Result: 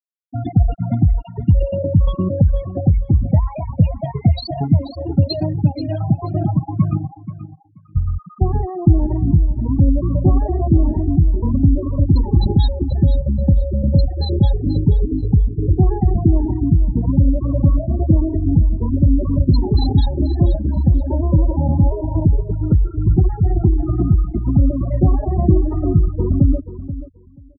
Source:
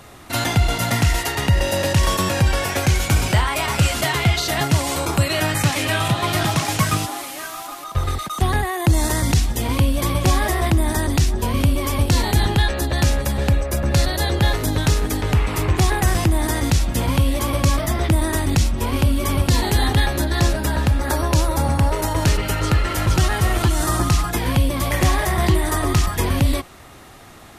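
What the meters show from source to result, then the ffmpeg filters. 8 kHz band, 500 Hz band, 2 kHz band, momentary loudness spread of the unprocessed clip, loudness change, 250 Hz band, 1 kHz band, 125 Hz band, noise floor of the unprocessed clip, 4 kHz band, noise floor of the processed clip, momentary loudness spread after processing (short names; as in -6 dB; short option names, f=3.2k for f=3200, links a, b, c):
under -40 dB, -1.0 dB, under -30 dB, 3 LU, +2.0 dB, +4.5 dB, -9.0 dB, +4.0 dB, -34 dBFS, -12.5 dB, -41 dBFS, 4 LU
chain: -af "afftfilt=real='re*gte(hypot(re,im),0.316)':imag='im*gte(hypot(re,im),0.316)':win_size=1024:overlap=0.75,firequalizer=gain_entry='entry(120,0);entry(180,4);entry(690,-4);entry(1700,-29);entry(5000,14);entry(7400,-2);entry(12000,-1)':delay=0.05:min_phase=1,aecho=1:1:482|964:0.211|0.0338,volume=3.5dB"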